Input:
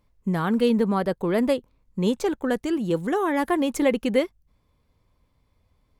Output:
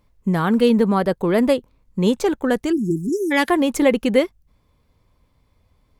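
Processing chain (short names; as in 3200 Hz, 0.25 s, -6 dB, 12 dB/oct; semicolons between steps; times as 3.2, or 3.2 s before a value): 2.72–3.31 spectral delete 410–5000 Hz; 3.09–3.5 weighting filter D; gain +5 dB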